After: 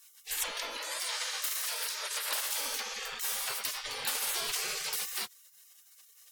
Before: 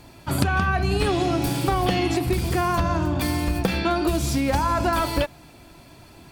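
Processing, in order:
gate on every frequency bin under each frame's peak −30 dB weak
soft clipping −27.5 dBFS, distortion −23 dB
0:00.77–0:02.61: linear-phase brick-wall high-pass 310 Hz
level +6.5 dB

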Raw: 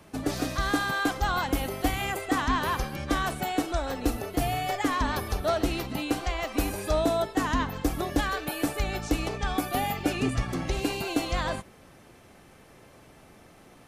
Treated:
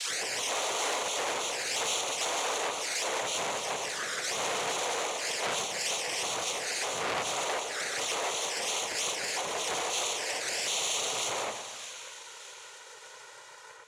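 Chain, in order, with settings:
every frequency bin delayed by itself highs early, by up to 442 ms
Chebyshev high-pass filter 660 Hz, order 10
dynamic equaliser 840 Hz, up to −5 dB, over −41 dBFS, Q 0.82
in parallel at +1.5 dB: brickwall limiter −30.5 dBFS, peak gain reduction 9 dB
on the sum: cochlear-implant simulation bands 3
flanger swept by the level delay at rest 2.6 ms, full sweep at −29.5 dBFS
echo with a time of its own for lows and highs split 1,600 Hz, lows 119 ms, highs 610 ms, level −12 dB
on a send at −15 dB: convolution reverb RT60 1.3 s, pre-delay 4 ms
on the sum: saturating transformer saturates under 3,800 Hz
level +5.5 dB

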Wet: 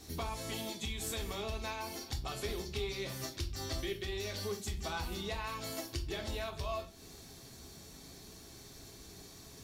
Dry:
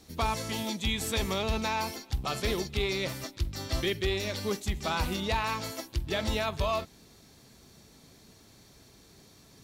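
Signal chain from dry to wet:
downward compressor 6 to 1, threshold −40 dBFS, peak gain reduction 15 dB
on a send: bass and treble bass 0 dB, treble +9 dB + convolution reverb RT60 0.40 s, pre-delay 3 ms, DRR 3 dB
on the sum: level +1 dB

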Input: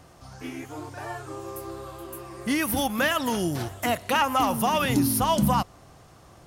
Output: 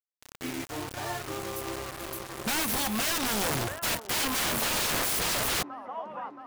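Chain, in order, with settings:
bit-depth reduction 6 bits, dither none
delay with a band-pass on its return 674 ms, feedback 59%, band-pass 820 Hz, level −14 dB
wrap-around overflow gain 23.5 dB

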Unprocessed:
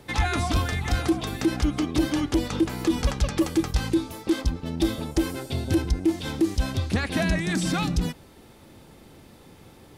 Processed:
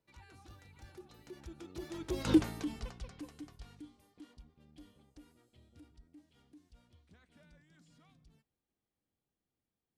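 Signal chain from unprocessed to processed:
source passing by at 0:02.34, 35 m/s, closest 2.1 metres
level −1.5 dB

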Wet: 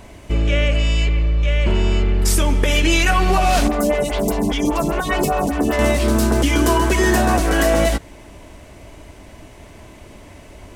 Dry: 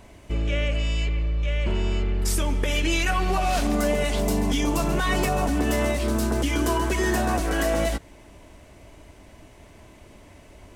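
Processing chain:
0:03.68–0:05.79: phaser with staggered stages 5 Hz
level +7.5 dB

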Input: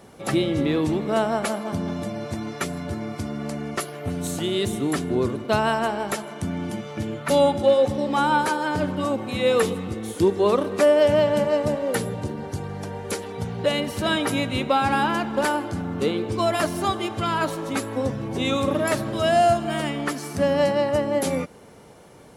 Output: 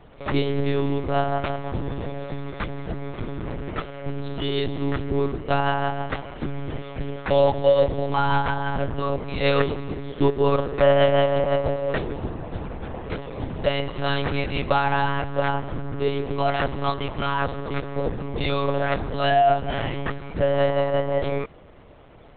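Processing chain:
one-pitch LPC vocoder at 8 kHz 140 Hz

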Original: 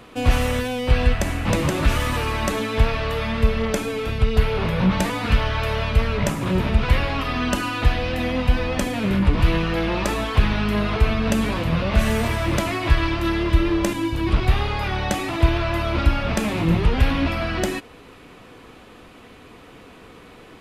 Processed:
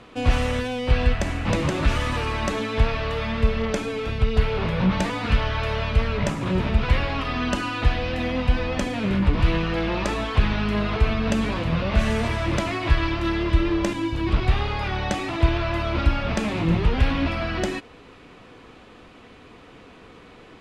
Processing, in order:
low-pass filter 6,900 Hz 12 dB per octave
level −2 dB

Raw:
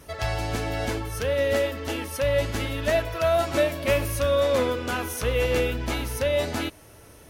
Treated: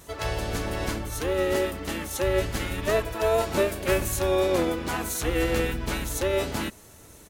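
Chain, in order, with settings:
high-shelf EQ 10,000 Hz +9.5 dB
pitch-shifted copies added −7 semitones −1 dB, +7 semitones −16 dB
level −4 dB

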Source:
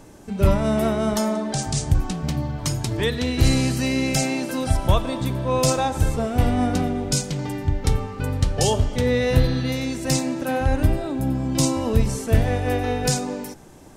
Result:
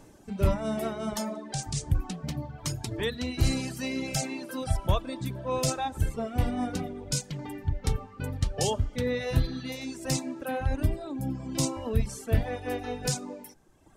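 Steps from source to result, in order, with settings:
reverb reduction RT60 1.3 s
level −6.5 dB

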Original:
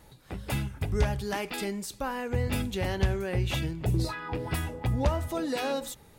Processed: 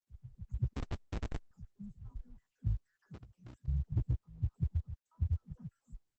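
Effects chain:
time-frequency cells dropped at random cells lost 64%
0:05.19–0:05.59: dynamic equaliser 170 Hz, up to +8 dB, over −52 dBFS, Q 1.2
inverse Chebyshev band-stop filter 300–4,400 Hz, stop band 50 dB
all-pass dispersion lows, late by 120 ms, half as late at 300 Hz
auto-filter low-pass saw down 2.1 Hz 900–2,100 Hz
hard clipping −27 dBFS, distortion −9 dB
downward compressor 5 to 1, threshold −40 dBFS, peak gain reduction 10.5 dB
0:00.73–0:01.51: comparator with hysteresis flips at −42.5 dBFS
0:02.99–0:03.68: meter weighting curve ITU-R 468
level +10 dB
Opus 10 kbit/s 48,000 Hz

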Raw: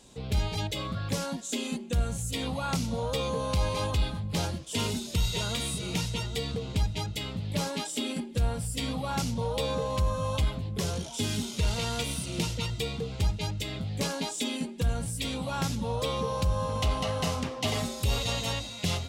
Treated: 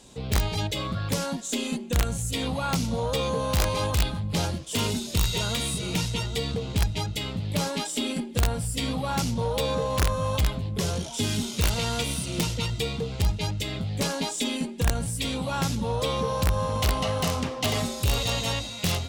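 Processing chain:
harmonic generator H 5 −34 dB, 6 −30 dB, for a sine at −17 dBFS
wrap-around overflow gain 19 dB
level +3 dB

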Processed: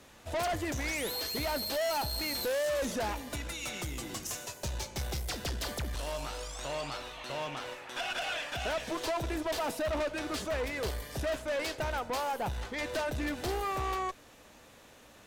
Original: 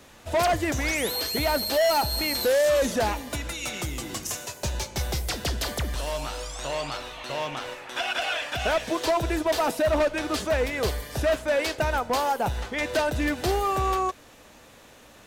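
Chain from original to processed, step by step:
tube saturation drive 25 dB, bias 0.35
level −4 dB

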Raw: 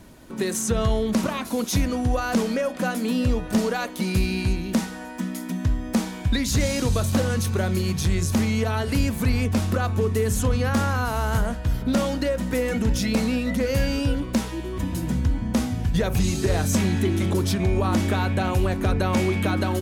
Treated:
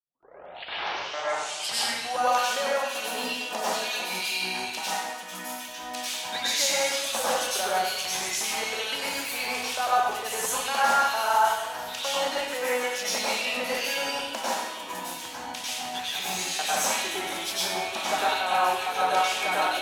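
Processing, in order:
turntable start at the beginning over 2.11 s
auto-filter high-pass square 2.2 Hz 760–2,900 Hz
dense smooth reverb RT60 0.95 s, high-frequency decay 0.95×, pre-delay 85 ms, DRR −8 dB
level −6 dB

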